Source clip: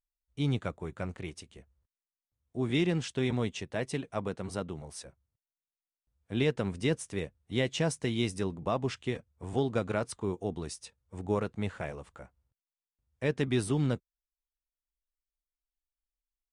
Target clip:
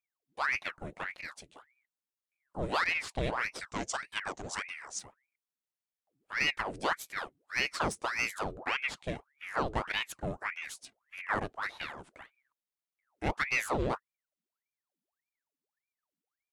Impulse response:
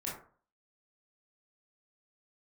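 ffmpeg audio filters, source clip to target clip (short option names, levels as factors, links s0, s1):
-filter_complex "[0:a]aeval=exprs='0.158*(cos(1*acos(clip(val(0)/0.158,-1,1)))-cos(1*PI/2))+0.00794*(cos(8*acos(clip(val(0)/0.158,-1,1)))-cos(8*PI/2))':c=same,asettb=1/sr,asplit=3[s0][s1][s2];[s0]atrim=end=3.604[s3];[s1]atrim=start=3.6:end=4.99,asetpts=PTS-STARTPTS,afade=t=in:d=0.004:c=qsin,afade=t=out:st=1.386:d=0.004:c=qsin,lowpass=f=6700:t=q:w=9.7[s4];[s2]atrim=start=4.986[s5];[s3][s4]acrossfade=d=0.004:c1=hsin:c2=qsin[s6];[s6][s5]acrossfade=d=0.004:c1=qsin:c2=hsin,aeval=exprs='val(0)*sin(2*PI*1300*n/s+1300*0.85/1.7*sin(2*PI*1.7*n/s))':c=same"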